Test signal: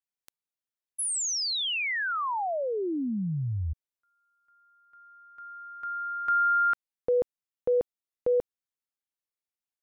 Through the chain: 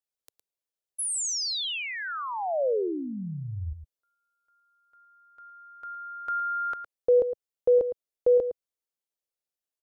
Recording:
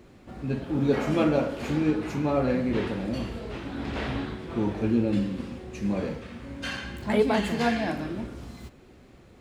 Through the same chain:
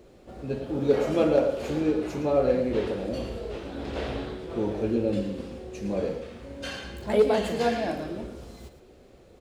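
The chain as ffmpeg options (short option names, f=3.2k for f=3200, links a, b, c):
-filter_complex "[0:a]equalizer=f=125:t=o:w=1:g=-5,equalizer=f=250:t=o:w=1:g=-5,equalizer=f=500:t=o:w=1:g=7,equalizer=f=1k:t=o:w=1:g=-4,equalizer=f=2k:t=o:w=1:g=-5,asplit=2[a][b];[b]aecho=0:1:111:0.282[c];[a][c]amix=inputs=2:normalize=0,asoftclip=type=hard:threshold=-12dB"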